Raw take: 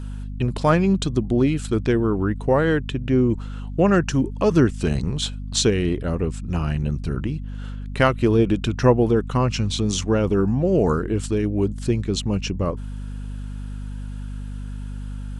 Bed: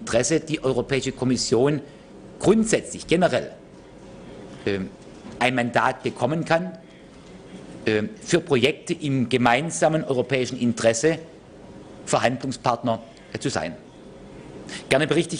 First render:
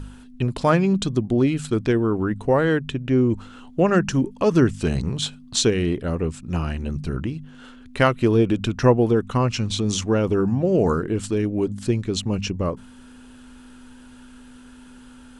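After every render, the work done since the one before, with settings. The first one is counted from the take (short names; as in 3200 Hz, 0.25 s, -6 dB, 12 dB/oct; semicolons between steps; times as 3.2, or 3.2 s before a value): de-hum 50 Hz, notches 4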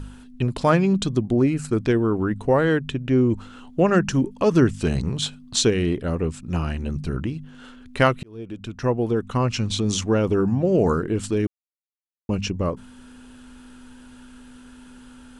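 1.32–1.77 bell 3400 Hz -15 dB 0.4 oct; 8.23–9.6 fade in; 11.47–12.29 mute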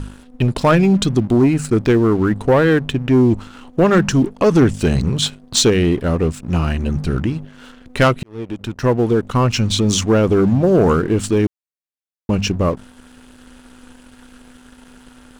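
sample leveller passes 2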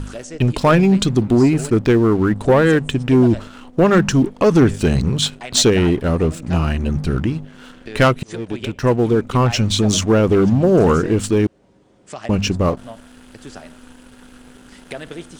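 add bed -12.5 dB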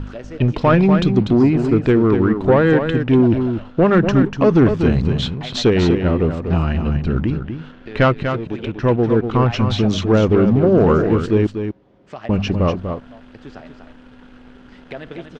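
air absorption 230 m; echo 0.243 s -7.5 dB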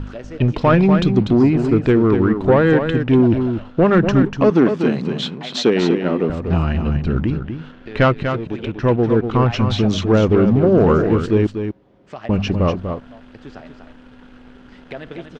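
4.5–6.3 HPF 180 Hz 24 dB/oct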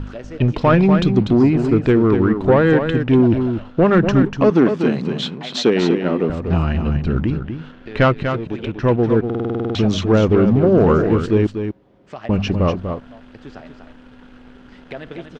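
9.25 stutter in place 0.05 s, 10 plays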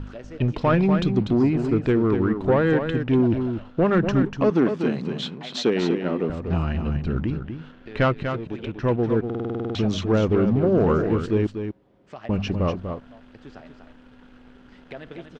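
gain -6 dB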